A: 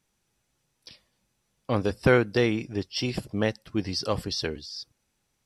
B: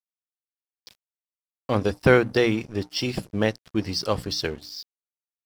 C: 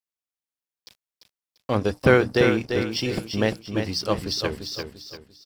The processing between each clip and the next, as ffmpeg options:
ffmpeg -i in.wav -af "bandreject=frequency=60:width_type=h:width=6,bandreject=frequency=120:width_type=h:width=6,bandreject=frequency=180:width_type=h:width=6,bandreject=frequency=240:width_type=h:width=6,bandreject=frequency=300:width_type=h:width=6,aeval=exprs='sgn(val(0))*max(abs(val(0))-0.00501,0)':channel_layout=same,volume=3.5dB" out.wav
ffmpeg -i in.wav -af "aecho=1:1:344|688|1032|1376:0.473|0.161|0.0547|0.0186" out.wav

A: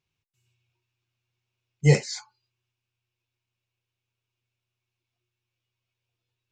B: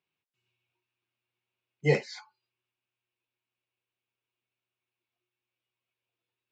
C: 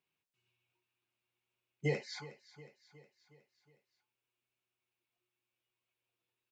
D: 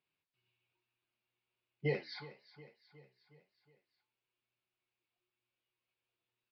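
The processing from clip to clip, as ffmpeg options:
ffmpeg -i in.wav -filter_complex "[0:a]acrossover=split=180 4200:gain=0.0794 1 0.0794[link_01][link_02][link_03];[link_01][link_02][link_03]amix=inputs=3:normalize=0,volume=-1.5dB" out.wav
ffmpeg -i in.wav -af "acompressor=threshold=-30dB:ratio=4,aecho=1:1:364|728|1092|1456|1820:0.141|0.0791|0.0443|0.0248|0.0139,volume=-1dB" out.wav
ffmpeg -i in.wav -af "flanger=delay=8.5:depth=7.4:regen=75:speed=1.1:shape=sinusoidal,aresample=11025,aresample=44100,volume=3.5dB" out.wav

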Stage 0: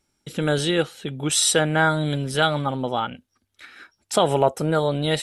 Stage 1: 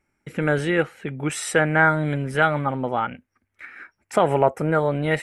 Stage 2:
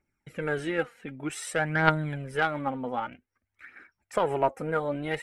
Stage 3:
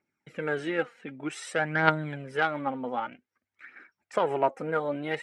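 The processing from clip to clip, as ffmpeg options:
ffmpeg -i in.wav -af "highshelf=frequency=2800:width_type=q:width=3:gain=-9" out.wav
ffmpeg -i in.wav -af "aphaser=in_gain=1:out_gain=1:delay=4.4:decay=0.51:speed=0.53:type=triangular,aeval=exprs='1.06*(cos(1*acos(clip(val(0)/1.06,-1,1)))-cos(1*PI/2))+0.188*(cos(3*acos(clip(val(0)/1.06,-1,1)))-cos(3*PI/2))':channel_layout=same,volume=-3dB" out.wav
ffmpeg -i in.wav -af "highpass=170,lowpass=6600" out.wav

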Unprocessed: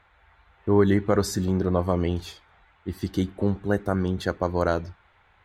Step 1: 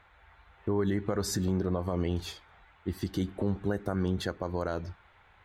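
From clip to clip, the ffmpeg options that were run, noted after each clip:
ffmpeg -i in.wav -af "alimiter=limit=-19.5dB:level=0:latency=1:release=162" out.wav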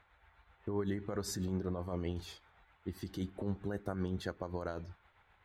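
ffmpeg -i in.wav -af "tremolo=f=7.7:d=0.41,volume=-5.5dB" out.wav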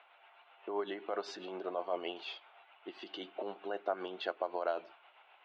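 ffmpeg -i in.wav -af "highpass=frequency=410:width=0.5412,highpass=frequency=410:width=1.3066,equalizer=frequency=470:width_type=q:width=4:gain=-5,equalizer=frequency=680:width_type=q:width=4:gain=7,equalizer=frequency=1800:width_type=q:width=4:gain=-7,equalizer=frequency=2800:width_type=q:width=4:gain=10,lowpass=frequency=3800:width=0.5412,lowpass=frequency=3800:width=1.3066,volume=5.5dB" out.wav

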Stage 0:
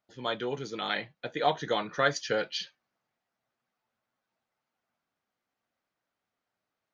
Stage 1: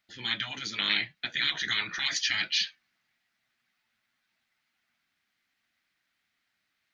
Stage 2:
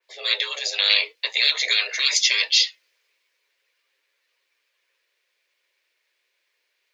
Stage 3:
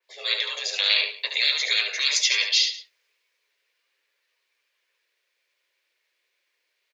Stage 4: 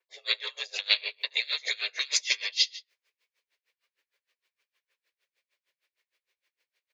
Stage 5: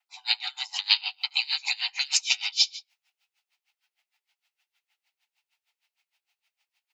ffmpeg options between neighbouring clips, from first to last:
ffmpeg -i in.wav -af "afftfilt=real='re*lt(hypot(re,im),0.0631)':imag='im*lt(hypot(re,im),0.0631)':win_size=1024:overlap=0.75,equalizer=frequency=125:width_type=o:width=1:gain=-4,equalizer=frequency=500:width_type=o:width=1:gain=-12,equalizer=frequency=1000:width_type=o:width=1:gain=-6,equalizer=frequency=2000:width_type=o:width=1:gain=9,equalizer=frequency=4000:width_type=o:width=1:gain=6,volume=5dB" out.wav
ffmpeg -i in.wav -af "afreqshift=300,adynamicequalizer=threshold=0.01:dfrequency=3000:dqfactor=0.7:tfrequency=3000:tqfactor=0.7:attack=5:release=100:ratio=0.375:range=3:mode=boostabove:tftype=highshelf,volume=5.5dB" out.wav
ffmpeg -i in.wav -af "aecho=1:1:72|179:0.473|0.106,volume=-3dB" out.wav
ffmpeg -i in.wav -af "aeval=exprs='val(0)*pow(10,-28*(0.5-0.5*cos(2*PI*6.5*n/s))/20)':channel_layout=same" out.wav
ffmpeg -i in.wav -af "afreqshift=330,volume=2.5dB" out.wav

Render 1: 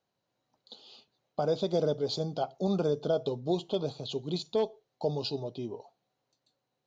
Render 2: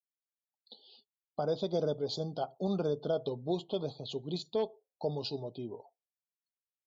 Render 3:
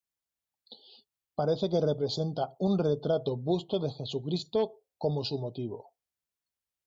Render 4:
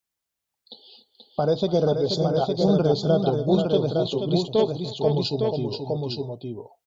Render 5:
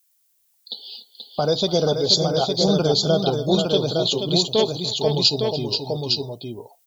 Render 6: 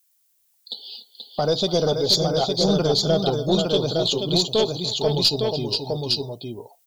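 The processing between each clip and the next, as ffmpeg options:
ffmpeg -i in.wav -af "afftdn=noise_reduction=34:noise_floor=-55,volume=-3.5dB" out.wav
ffmpeg -i in.wav -af "equalizer=frequency=60:width=0.64:gain=10,volume=3.5dB" out.wav
ffmpeg -i in.wav -af "aecho=1:1:289|481|859:0.133|0.473|0.631,volume=6dB" out.wav
ffmpeg -i in.wav -af "crystalizer=i=6.5:c=0" out.wav
ffmpeg -i in.wav -af "aeval=exprs='(tanh(2.24*val(0)+0.2)-tanh(0.2))/2.24':channel_layout=same" out.wav

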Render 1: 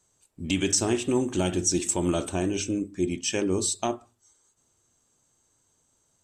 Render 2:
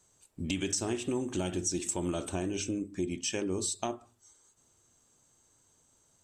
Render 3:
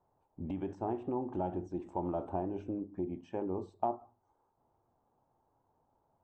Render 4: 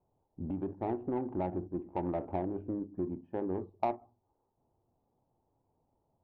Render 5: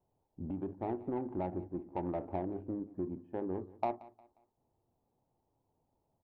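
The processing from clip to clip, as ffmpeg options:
ffmpeg -i in.wav -af "acompressor=threshold=-35dB:ratio=2.5,volume=1.5dB" out.wav
ffmpeg -i in.wav -af "lowpass=frequency=840:width_type=q:width=4.1,volume=-5dB" out.wav
ffmpeg -i in.wav -af "adynamicsmooth=sensitivity=1.5:basefreq=730,volume=2dB" out.wav
ffmpeg -i in.wav -af "aecho=1:1:178|356|534:0.0944|0.034|0.0122,volume=-2.5dB" out.wav

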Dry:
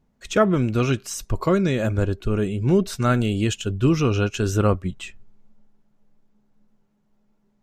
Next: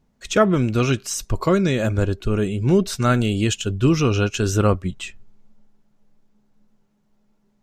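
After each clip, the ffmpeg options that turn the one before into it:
ffmpeg -i in.wav -af "equalizer=frequency=5600:width=0.57:gain=3.5,volume=1.5dB" out.wav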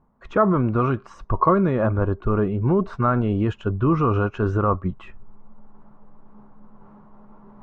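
ffmpeg -i in.wav -af "areverse,acompressor=mode=upward:threshold=-31dB:ratio=2.5,areverse,alimiter=limit=-12dB:level=0:latency=1:release=43,lowpass=frequency=1100:width_type=q:width=3.7" out.wav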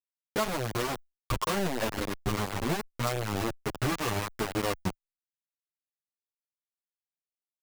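ffmpeg -i in.wav -filter_complex "[0:a]acompressor=threshold=-24dB:ratio=4,acrusher=bits=3:mix=0:aa=0.000001,asplit=2[link_01][link_02];[link_02]adelay=8.2,afreqshift=-1.2[link_03];[link_01][link_03]amix=inputs=2:normalize=1,volume=-2dB" out.wav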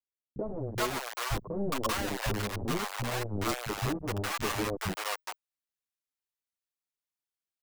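ffmpeg -i in.wav -filter_complex "[0:a]acrossover=split=170|620[link_01][link_02][link_03];[link_02]adelay=30[link_04];[link_03]adelay=420[link_05];[link_01][link_04][link_05]amix=inputs=3:normalize=0" out.wav

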